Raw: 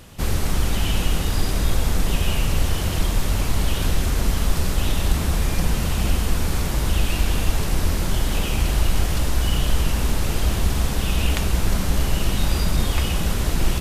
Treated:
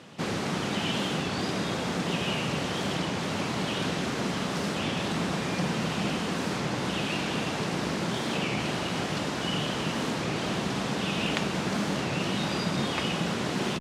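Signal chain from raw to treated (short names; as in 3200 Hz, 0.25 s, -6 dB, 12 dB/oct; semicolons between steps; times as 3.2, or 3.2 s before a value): HPF 150 Hz 24 dB/oct; air absorption 97 m; record warp 33 1/3 rpm, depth 160 cents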